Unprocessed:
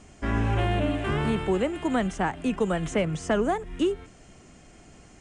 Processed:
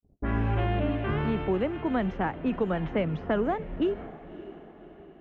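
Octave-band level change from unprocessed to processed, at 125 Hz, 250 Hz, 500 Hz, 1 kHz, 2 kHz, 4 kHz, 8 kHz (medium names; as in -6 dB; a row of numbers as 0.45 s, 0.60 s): -1.5 dB, -1.5 dB, -2.0 dB, -2.5 dB, -4.0 dB, -7.0 dB, under -25 dB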